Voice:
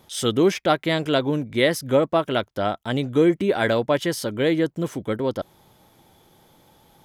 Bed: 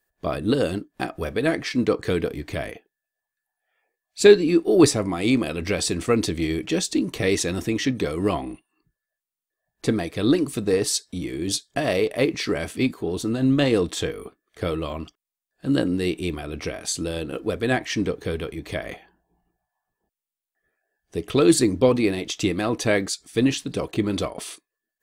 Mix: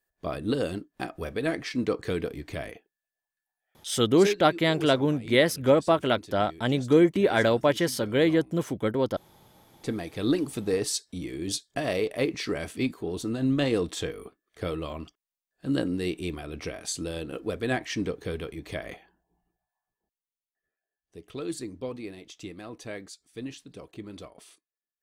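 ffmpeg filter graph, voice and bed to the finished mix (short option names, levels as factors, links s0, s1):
-filter_complex "[0:a]adelay=3750,volume=0.841[s0];[1:a]volume=3.16,afade=t=out:st=3.99:d=0.38:silence=0.16788,afade=t=in:st=9.28:d=1.03:silence=0.158489,afade=t=out:st=19.36:d=1.71:silence=0.251189[s1];[s0][s1]amix=inputs=2:normalize=0"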